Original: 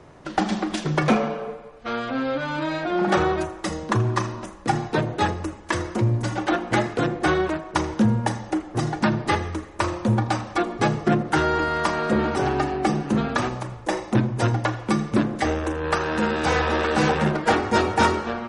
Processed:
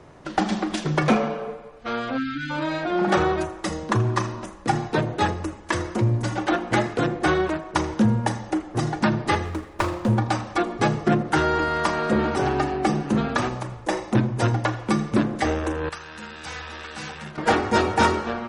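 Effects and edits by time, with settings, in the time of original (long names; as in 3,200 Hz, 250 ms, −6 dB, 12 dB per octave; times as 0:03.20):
0:02.18–0:02.50: time-frequency box erased 380–1,300 Hz
0:09.45–0:10.17: windowed peak hold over 5 samples
0:15.89–0:17.38: guitar amp tone stack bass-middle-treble 5-5-5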